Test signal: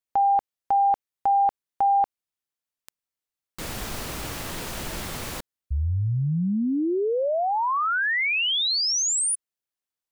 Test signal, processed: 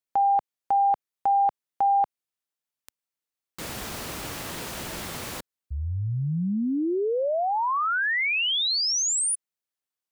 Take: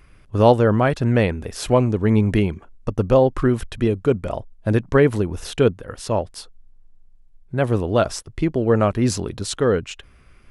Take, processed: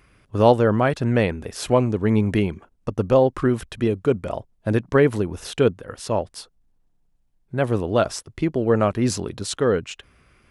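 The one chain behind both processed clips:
high-pass filter 97 Hz 6 dB per octave
level −1 dB

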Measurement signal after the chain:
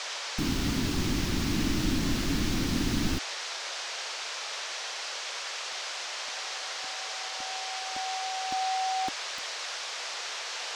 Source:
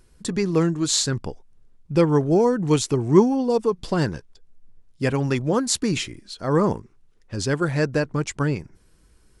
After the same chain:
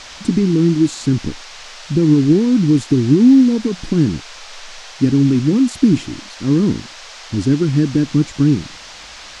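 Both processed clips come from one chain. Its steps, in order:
brickwall limiter −14 dBFS
low shelf with overshoot 430 Hz +13.5 dB, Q 3
noise in a band 490–6,100 Hz −30 dBFS
level −6.5 dB

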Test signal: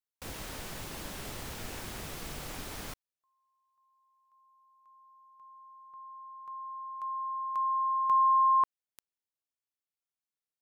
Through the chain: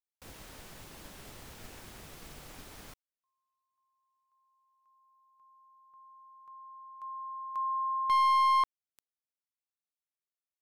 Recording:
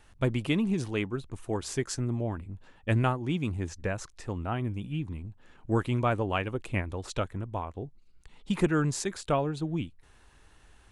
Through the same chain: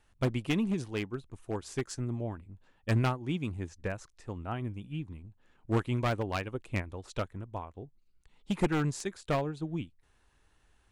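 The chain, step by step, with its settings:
wavefolder on the positive side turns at −22.5 dBFS
expander for the loud parts 1.5 to 1, over −41 dBFS

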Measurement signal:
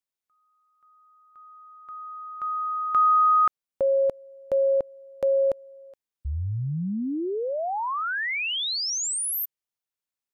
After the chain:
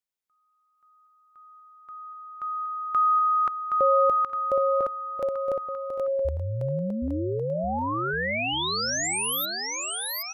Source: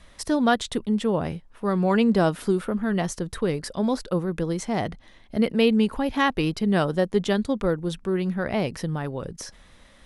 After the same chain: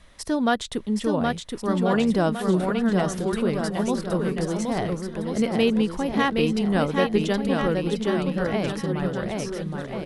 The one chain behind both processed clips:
bouncing-ball delay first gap 770 ms, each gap 0.8×, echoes 5
level −1.5 dB

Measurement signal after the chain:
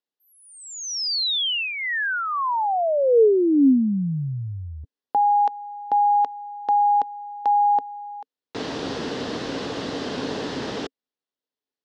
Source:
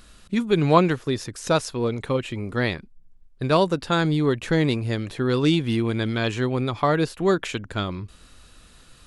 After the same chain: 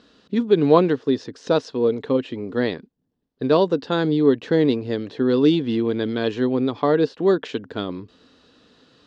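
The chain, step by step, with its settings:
loudspeaker in its box 160–5,000 Hz, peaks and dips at 270 Hz +9 dB, 450 Hz +9 dB, 1,300 Hz −4 dB, 2,300 Hz −8 dB
level −1 dB

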